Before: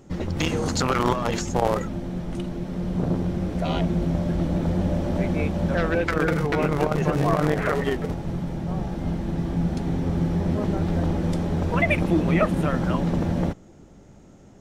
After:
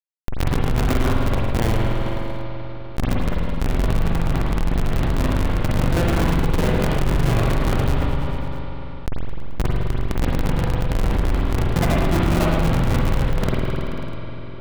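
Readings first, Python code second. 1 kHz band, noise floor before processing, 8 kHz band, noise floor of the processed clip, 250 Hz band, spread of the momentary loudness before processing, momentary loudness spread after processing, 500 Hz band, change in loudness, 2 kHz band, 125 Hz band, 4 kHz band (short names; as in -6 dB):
+1.0 dB, -49 dBFS, +1.5 dB, -29 dBFS, -0.5 dB, 8 LU, 12 LU, -0.5 dB, +2.0 dB, +0.5 dB, +3.5 dB, +4.0 dB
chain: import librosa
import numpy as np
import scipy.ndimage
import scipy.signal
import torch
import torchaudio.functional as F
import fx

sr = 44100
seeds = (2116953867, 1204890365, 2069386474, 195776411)

y = fx.schmitt(x, sr, flips_db=-16.5)
y = fx.echo_feedback(y, sr, ms=108, feedback_pct=58, wet_db=-12)
y = fx.rev_spring(y, sr, rt60_s=1.4, pass_ms=(42, 50), chirp_ms=35, drr_db=-3.0)
y = fx.env_flatten(y, sr, amount_pct=70)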